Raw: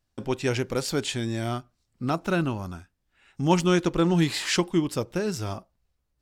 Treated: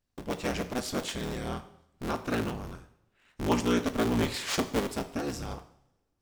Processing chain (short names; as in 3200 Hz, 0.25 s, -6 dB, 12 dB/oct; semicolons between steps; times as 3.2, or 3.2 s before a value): cycle switcher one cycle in 3, inverted; two-slope reverb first 0.66 s, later 2.2 s, from -27 dB, DRR 9 dB; gain -6 dB